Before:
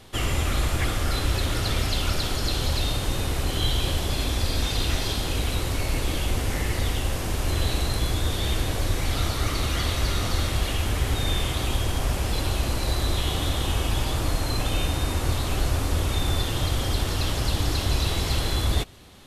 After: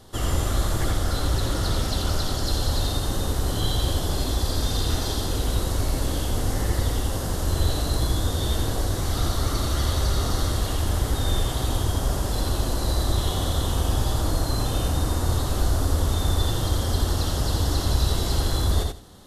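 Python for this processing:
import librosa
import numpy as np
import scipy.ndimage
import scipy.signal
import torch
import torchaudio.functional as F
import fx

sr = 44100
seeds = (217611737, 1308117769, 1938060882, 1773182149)

y = fx.peak_eq(x, sr, hz=2400.0, db=-14.5, octaves=0.59)
y = fx.echo_feedback(y, sr, ms=85, feedback_pct=17, wet_db=-3.5)
y = fx.doppler_dist(y, sr, depth_ms=0.17, at=(0.91, 2.47))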